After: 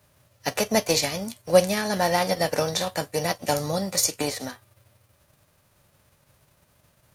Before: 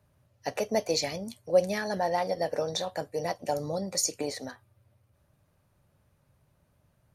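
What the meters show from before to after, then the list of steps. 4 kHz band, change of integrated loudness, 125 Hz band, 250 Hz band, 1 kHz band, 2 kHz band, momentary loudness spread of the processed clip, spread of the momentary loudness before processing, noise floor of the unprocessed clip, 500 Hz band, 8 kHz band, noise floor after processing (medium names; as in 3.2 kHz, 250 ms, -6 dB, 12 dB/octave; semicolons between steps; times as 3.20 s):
+7.5 dB, +6.0 dB, +8.5 dB, +7.0 dB, +5.5 dB, +8.5 dB, 9 LU, 10 LU, -70 dBFS, +4.5 dB, +7.0 dB, -64 dBFS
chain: formants flattened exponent 0.6; trim +5.5 dB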